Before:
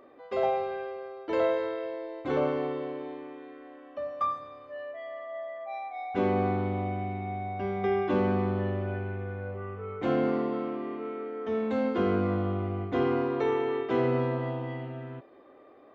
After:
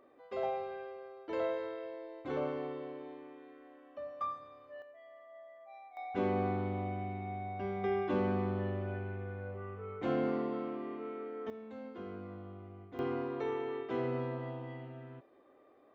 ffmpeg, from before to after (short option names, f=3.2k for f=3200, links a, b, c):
-af "asetnsamples=n=441:p=0,asendcmd='4.82 volume volume -15.5dB;5.97 volume volume -6dB;11.5 volume volume -18.5dB;12.99 volume volume -9dB',volume=-8.5dB"